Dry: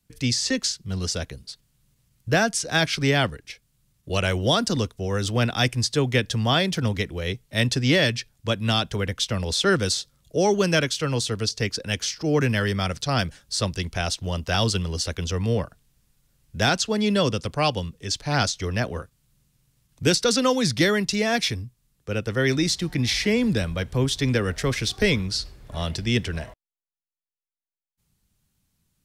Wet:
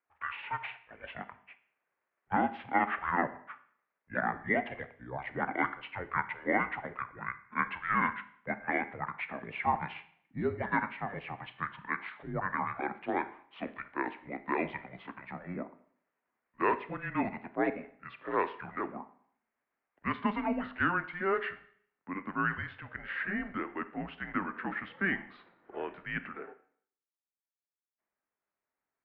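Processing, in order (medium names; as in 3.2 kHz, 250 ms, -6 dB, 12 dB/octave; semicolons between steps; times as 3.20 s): pitch bend over the whole clip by -9 st ending unshifted; Schroeder reverb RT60 0.6 s, combs from 28 ms, DRR 12.5 dB; mistuned SSB -190 Hz 480–2200 Hz; trim -3 dB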